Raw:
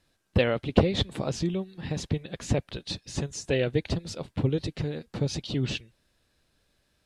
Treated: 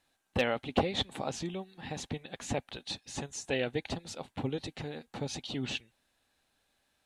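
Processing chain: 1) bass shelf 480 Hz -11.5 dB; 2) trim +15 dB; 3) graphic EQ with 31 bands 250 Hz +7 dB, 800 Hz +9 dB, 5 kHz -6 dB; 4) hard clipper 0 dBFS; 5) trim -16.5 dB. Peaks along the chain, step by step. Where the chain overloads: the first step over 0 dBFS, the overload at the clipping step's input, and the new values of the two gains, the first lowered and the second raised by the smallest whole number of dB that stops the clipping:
-11.0 dBFS, +4.0 dBFS, +6.5 dBFS, 0.0 dBFS, -16.5 dBFS; step 2, 6.5 dB; step 2 +8 dB, step 5 -9.5 dB

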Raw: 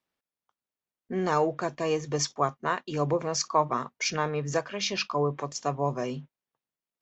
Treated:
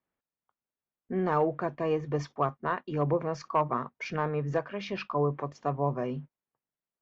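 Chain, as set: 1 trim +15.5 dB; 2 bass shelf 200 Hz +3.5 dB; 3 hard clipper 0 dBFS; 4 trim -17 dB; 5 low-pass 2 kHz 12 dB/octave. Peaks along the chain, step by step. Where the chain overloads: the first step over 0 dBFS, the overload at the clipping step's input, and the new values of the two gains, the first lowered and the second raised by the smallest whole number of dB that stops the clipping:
+5.5 dBFS, +5.5 dBFS, 0.0 dBFS, -17.0 dBFS, -16.5 dBFS; step 1, 5.5 dB; step 1 +9.5 dB, step 4 -11 dB

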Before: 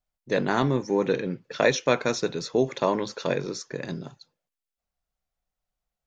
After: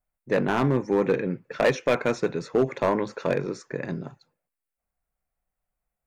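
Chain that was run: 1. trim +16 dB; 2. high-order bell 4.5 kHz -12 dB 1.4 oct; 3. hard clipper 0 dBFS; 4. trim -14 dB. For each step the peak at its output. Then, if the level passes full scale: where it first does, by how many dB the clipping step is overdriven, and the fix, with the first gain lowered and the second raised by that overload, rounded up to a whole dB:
+10.0 dBFS, +9.0 dBFS, 0.0 dBFS, -14.0 dBFS; step 1, 9.0 dB; step 1 +7 dB, step 4 -5 dB

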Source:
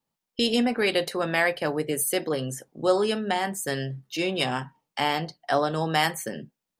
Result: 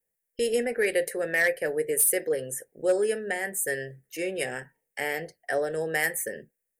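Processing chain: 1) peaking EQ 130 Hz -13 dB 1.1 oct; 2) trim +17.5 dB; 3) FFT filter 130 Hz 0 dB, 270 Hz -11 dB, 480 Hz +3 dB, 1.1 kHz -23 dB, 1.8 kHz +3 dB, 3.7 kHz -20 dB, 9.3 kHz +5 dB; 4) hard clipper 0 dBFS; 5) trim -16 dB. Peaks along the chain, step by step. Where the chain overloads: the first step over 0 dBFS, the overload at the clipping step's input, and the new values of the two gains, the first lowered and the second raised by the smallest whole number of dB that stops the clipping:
-9.0 dBFS, +8.5 dBFS, +7.5 dBFS, 0.0 dBFS, -16.0 dBFS; step 2, 7.5 dB; step 2 +9.5 dB, step 5 -8 dB

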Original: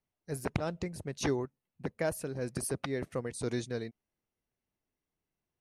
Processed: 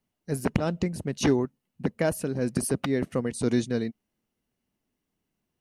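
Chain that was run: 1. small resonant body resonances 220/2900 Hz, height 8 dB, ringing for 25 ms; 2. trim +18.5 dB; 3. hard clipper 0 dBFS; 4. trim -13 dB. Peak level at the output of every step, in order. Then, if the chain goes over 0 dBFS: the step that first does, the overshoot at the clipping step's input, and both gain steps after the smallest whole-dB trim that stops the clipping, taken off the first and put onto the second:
-13.0 dBFS, +5.5 dBFS, 0.0 dBFS, -13.0 dBFS; step 2, 5.5 dB; step 2 +12.5 dB, step 4 -7 dB

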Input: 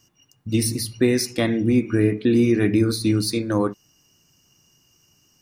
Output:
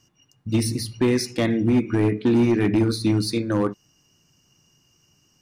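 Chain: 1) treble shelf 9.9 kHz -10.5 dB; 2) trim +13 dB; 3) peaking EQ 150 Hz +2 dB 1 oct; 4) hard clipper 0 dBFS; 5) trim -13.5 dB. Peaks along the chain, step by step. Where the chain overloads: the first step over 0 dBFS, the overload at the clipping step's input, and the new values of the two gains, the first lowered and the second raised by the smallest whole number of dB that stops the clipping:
-6.5 dBFS, +6.5 dBFS, +7.0 dBFS, 0.0 dBFS, -13.5 dBFS; step 2, 7.0 dB; step 2 +6 dB, step 5 -6.5 dB

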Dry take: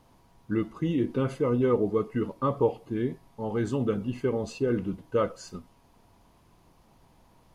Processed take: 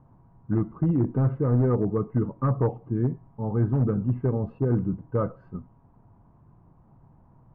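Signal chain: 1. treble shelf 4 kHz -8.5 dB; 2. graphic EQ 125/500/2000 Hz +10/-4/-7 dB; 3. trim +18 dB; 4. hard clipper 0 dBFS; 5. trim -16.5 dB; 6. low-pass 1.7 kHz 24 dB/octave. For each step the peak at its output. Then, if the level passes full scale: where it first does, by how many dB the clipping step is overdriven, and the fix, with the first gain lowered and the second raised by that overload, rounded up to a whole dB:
-13.0 dBFS, -12.0 dBFS, +6.0 dBFS, 0.0 dBFS, -16.5 dBFS, -16.0 dBFS; step 3, 6.0 dB; step 3 +12 dB, step 5 -10.5 dB

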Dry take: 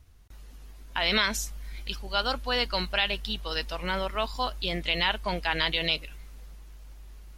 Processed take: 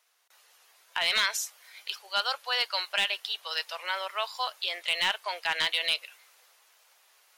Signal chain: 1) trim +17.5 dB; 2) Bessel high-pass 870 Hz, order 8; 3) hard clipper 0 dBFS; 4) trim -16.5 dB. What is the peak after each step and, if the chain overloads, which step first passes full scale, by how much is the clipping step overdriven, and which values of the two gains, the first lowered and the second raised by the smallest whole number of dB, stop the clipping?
+7.0 dBFS, +7.0 dBFS, 0.0 dBFS, -16.5 dBFS; step 1, 7.0 dB; step 1 +10.5 dB, step 4 -9.5 dB

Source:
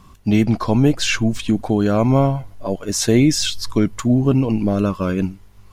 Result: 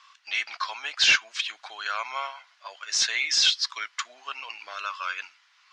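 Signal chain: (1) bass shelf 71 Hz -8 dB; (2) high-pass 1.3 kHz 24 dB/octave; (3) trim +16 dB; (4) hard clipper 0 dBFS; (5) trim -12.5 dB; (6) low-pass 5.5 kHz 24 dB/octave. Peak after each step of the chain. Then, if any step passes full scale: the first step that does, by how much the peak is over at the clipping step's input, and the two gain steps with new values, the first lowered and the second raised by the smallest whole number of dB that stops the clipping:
-4.5 dBFS, -9.5 dBFS, +6.5 dBFS, 0.0 dBFS, -12.5 dBFS, -10.5 dBFS; step 3, 6.5 dB; step 3 +9 dB, step 5 -5.5 dB

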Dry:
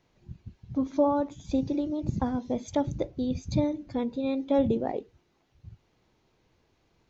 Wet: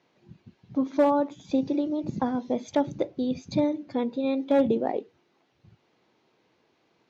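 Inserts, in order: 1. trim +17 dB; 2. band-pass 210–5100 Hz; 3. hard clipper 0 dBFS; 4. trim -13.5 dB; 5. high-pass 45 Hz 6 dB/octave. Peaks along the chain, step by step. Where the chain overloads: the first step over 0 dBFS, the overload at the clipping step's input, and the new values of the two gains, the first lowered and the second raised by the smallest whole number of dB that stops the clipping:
+4.5 dBFS, +4.0 dBFS, 0.0 dBFS, -13.5 dBFS, -12.5 dBFS; step 1, 4.0 dB; step 1 +13 dB, step 4 -9.5 dB

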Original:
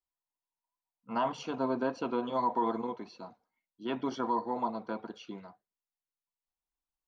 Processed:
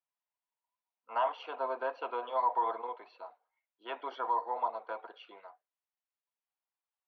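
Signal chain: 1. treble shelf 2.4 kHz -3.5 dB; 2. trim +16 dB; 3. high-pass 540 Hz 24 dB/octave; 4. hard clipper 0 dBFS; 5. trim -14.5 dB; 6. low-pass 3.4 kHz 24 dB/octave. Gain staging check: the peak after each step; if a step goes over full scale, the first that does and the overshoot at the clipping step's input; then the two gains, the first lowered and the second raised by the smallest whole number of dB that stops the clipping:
-19.5 dBFS, -3.5 dBFS, -4.5 dBFS, -4.5 dBFS, -19.0 dBFS, -19.0 dBFS; nothing clips

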